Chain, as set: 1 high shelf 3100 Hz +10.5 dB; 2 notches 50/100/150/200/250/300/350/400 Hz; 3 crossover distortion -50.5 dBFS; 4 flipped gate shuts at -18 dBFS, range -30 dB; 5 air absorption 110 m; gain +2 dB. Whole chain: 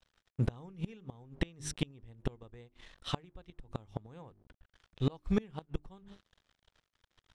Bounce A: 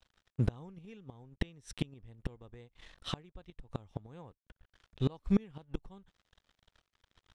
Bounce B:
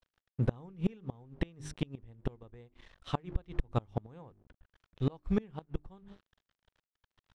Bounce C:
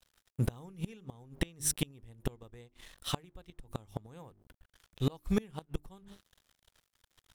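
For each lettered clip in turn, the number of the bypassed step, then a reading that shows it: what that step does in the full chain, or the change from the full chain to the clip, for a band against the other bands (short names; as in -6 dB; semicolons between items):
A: 2, 8 kHz band -7.0 dB; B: 1, 4 kHz band -7.5 dB; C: 5, 8 kHz band +10.5 dB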